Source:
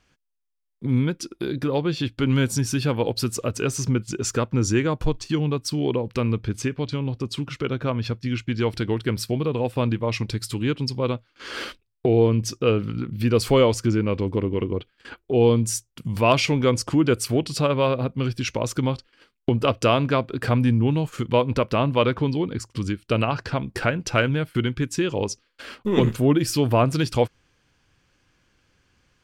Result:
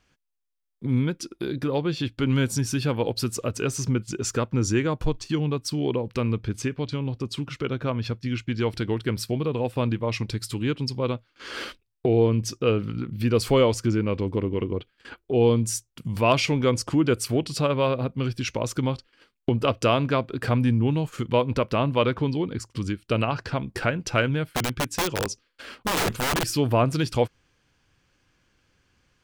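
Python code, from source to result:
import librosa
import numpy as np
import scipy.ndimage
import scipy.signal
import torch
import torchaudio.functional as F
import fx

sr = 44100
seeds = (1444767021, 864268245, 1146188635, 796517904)

y = fx.overflow_wrap(x, sr, gain_db=17.0, at=(24.45, 26.45))
y = y * 10.0 ** (-2.0 / 20.0)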